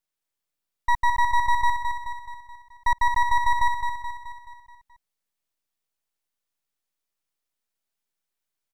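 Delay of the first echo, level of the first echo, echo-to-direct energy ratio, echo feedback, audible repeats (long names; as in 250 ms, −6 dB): 214 ms, −6.0 dB, −4.5 dB, 52%, 6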